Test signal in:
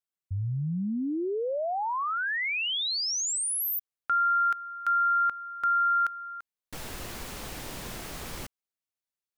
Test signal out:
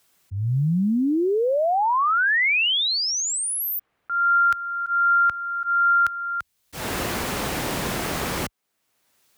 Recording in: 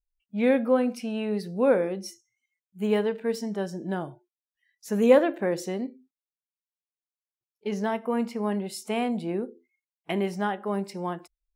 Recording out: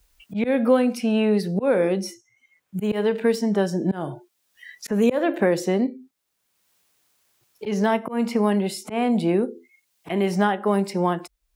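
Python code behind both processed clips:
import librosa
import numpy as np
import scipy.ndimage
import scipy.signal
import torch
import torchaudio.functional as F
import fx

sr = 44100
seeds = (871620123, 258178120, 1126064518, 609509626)

y = scipy.signal.sosfilt(scipy.signal.butter(2, 41.0, 'highpass', fs=sr, output='sos'), x)
y = fx.auto_swell(y, sr, attack_ms=271.0)
y = fx.band_squash(y, sr, depth_pct=70)
y = F.gain(torch.from_numpy(y), 8.5).numpy()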